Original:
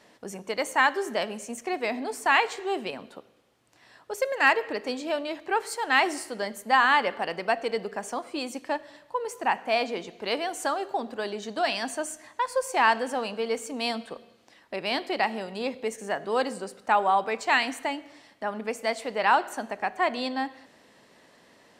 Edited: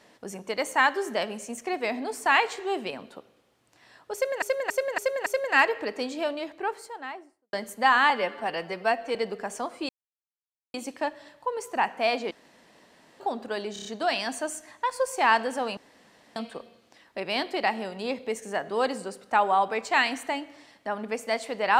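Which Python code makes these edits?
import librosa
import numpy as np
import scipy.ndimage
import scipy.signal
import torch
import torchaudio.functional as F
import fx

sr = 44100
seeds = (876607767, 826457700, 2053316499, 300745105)

y = fx.studio_fade_out(x, sr, start_s=5.06, length_s=1.35)
y = fx.edit(y, sr, fx.repeat(start_s=4.14, length_s=0.28, count=5),
    fx.stretch_span(start_s=6.98, length_s=0.7, factor=1.5),
    fx.insert_silence(at_s=8.42, length_s=0.85),
    fx.room_tone_fill(start_s=9.99, length_s=0.89),
    fx.stutter(start_s=11.41, slice_s=0.03, count=5),
    fx.room_tone_fill(start_s=13.33, length_s=0.59), tone=tone)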